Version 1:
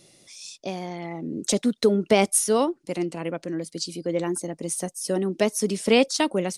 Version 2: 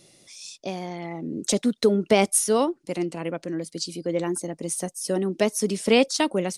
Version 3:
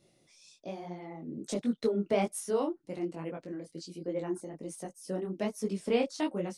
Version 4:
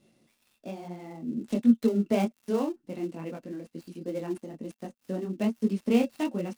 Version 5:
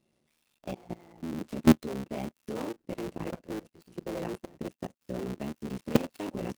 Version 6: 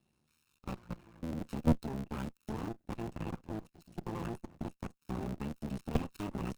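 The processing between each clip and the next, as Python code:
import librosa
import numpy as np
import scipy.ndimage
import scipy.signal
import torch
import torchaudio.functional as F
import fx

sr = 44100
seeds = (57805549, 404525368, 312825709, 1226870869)

y1 = x
y2 = fx.high_shelf(y1, sr, hz=2500.0, db=-10.0)
y2 = fx.detune_double(y2, sr, cents=43)
y2 = y2 * 10.0 ** (-5.0 / 20.0)
y3 = fx.dead_time(y2, sr, dead_ms=0.087)
y3 = fx.small_body(y3, sr, hz=(230.0, 2700.0), ring_ms=70, db=12)
y4 = fx.cycle_switch(y3, sr, every=3, mode='muted')
y4 = fx.level_steps(y4, sr, step_db=20)
y4 = y4 * 10.0 ** (5.5 / 20.0)
y5 = fx.lower_of_two(y4, sr, delay_ms=0.75)
y5 = 10.0 ** (-18.0 / 20.0) * np.tanh(y5 / 10.0 ** (-18.0 / 20.0))
y5 = y5 * 10.0 ** (-1.5 / 20.0)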